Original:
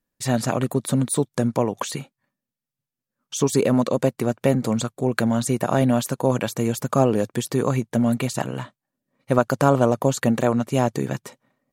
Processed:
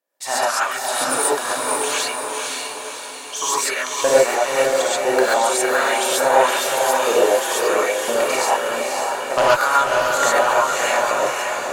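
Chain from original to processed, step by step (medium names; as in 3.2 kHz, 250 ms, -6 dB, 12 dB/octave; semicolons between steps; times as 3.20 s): LFO high-pass saw up 0.99 Hz 520–2900 Hz; Chebyshev shaper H 5 -7 dB, 7 -17 dB, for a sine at -1 dBFS; on a send: echo that smears into a reverb 542 ms, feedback 54%, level -3 dB; on the sum: gated-style reverb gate 160 ms rising, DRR -7.5 dB; trim -8 dB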